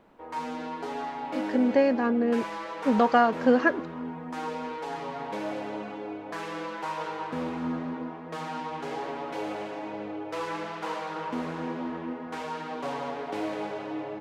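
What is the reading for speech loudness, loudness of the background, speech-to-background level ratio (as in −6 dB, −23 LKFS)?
−24.5 LKFS, −34.5 LKFS, 10.0 dB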